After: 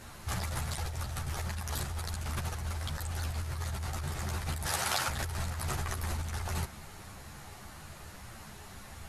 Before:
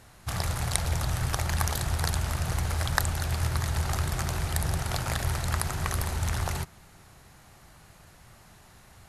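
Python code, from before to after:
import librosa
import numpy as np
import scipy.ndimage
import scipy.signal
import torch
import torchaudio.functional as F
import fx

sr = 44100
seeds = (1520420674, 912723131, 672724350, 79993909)

y = fx.highpass(x, sr, hz=840.0, slope=6, at=(4.64, 5.07), fade=0.02)
y = fx.over_compress(y, sr, threshold_db=-35.0, ratio=-1.0)
y = fx.ensemble(y, sr)
y = y * librosa.db_to_amplitude(2.5)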